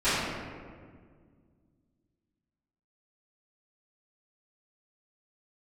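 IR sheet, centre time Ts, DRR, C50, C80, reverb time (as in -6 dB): 0.117 s, -18.5 dB, -2.5 dB, 0.0 dB, 1.8 s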